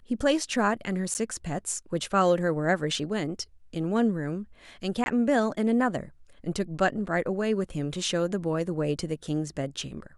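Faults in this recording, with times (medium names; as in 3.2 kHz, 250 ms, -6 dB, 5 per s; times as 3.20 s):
1.14–1.15 s: dropout 9.4 ms
5.04–5.06 s: dropout 21 ms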